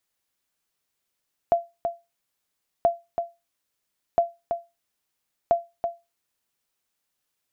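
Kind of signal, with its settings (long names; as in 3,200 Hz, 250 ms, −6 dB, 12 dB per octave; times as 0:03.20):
ping with an echo 684 Hz, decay 0.23 s, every 1.33 s, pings 4, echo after 0.33 s, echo −7 dB −11 dBFS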